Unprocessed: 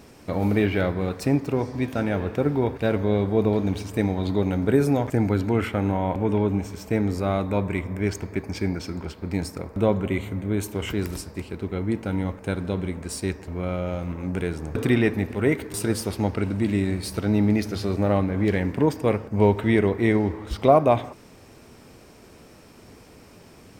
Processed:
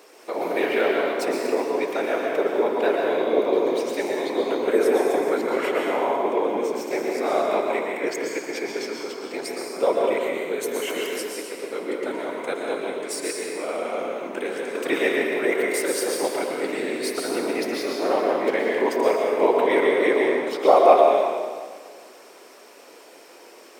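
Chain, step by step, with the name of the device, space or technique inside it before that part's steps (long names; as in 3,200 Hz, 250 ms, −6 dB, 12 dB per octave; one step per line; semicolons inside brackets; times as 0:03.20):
whispering ghost (random phases in short frames; high-pass filter 370 Hz 24 dB per octave; convolution reverb RT60 1.7 s, pre-delay 109 ms, DRR −1 dB)
level +1.5 dB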